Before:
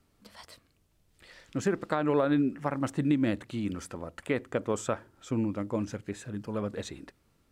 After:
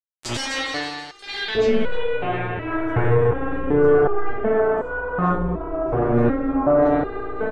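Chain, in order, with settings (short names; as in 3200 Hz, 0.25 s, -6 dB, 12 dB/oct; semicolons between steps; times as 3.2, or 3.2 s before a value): notch 930 Hz, Q 7.9; sample leveller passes 2; ring modulator 170 Hz; sample gate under -49.5 dBFS; low-pass sweep 8000 Hz -> 1200 Hz, 0.15–3.53; on a send: feedback echo 0.164 s, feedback 57%, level -14 dB; on the sum: spring tank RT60 1.4 s, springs 34/51 ms, chirp 80 ms, DRR -8.5 dB; maximiser +33 dB; stepped resonator 2.7 Hz 120–490 Hz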